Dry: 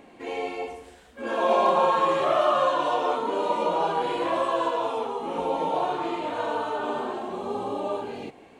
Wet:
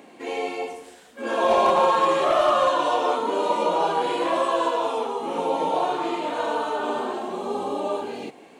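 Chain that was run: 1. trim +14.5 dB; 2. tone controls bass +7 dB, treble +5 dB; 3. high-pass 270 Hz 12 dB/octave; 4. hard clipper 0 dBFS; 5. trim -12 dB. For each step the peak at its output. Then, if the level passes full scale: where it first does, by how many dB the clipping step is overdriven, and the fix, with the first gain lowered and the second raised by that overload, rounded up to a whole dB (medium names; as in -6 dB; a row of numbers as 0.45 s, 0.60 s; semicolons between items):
+5.5 dBFS, +6.0 dBFS, +5.0 dBFS, 0.0 dBFS, -12.0 dBFS; step 1, 5.0 dB; step 1 +9.5 dB, step 5 -7 dB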